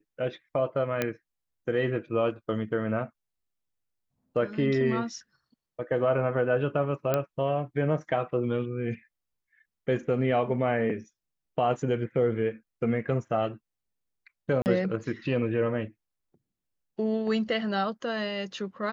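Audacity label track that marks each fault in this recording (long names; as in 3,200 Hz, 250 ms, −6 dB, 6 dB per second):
1.020000	1.020000	click −12 dBFS
7.140000	7.140000	click −12 dBFS
14.620000	14.660000	drop-out 39 ms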